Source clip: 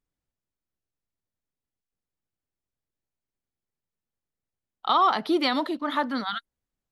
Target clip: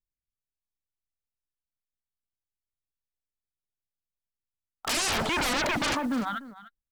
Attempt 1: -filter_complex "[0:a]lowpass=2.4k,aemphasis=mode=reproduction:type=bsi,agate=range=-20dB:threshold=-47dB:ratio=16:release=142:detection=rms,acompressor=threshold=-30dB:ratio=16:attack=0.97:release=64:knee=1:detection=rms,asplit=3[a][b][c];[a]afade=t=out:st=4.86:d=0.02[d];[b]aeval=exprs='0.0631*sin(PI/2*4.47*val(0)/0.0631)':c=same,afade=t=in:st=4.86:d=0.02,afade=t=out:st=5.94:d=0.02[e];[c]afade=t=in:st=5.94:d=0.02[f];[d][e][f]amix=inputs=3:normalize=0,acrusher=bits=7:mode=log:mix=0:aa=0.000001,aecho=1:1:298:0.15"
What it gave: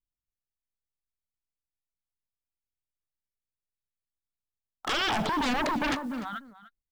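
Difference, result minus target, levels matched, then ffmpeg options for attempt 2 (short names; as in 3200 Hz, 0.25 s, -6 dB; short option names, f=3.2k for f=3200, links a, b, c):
compressor: peak gain reduction +6.5 dB
-filter_complex "[0:a]lowpass=2.4k,aemphasis=mode=reproduction:type=bsi,agate=range=-20dB:threshold=-47dB:ratio=16:release=142:detection=rms,acompressor=threshold=-23dB:ratio=16:attack=0.97:release=64:knee=1:detection=rms,asplit=3[a][b][c];[a]afade=t=out:st=4.86:d=0.02[d];[b]aeval=exprs='0.0631*sin(PI/2*4.47*val(0)/0.0631)':c=same,afade=t=in:st=4.86:d=0.02,afade=t=out:st=5.94:d=0.02[e];[c]afade=t=in:st=5.94:d=0.02[f];[d][e][f]amix=inputs=3:normalize=0,acrusher=bits=7:mode=log:mix=0:aa=0.000001,aecho=1:1:298:0.15"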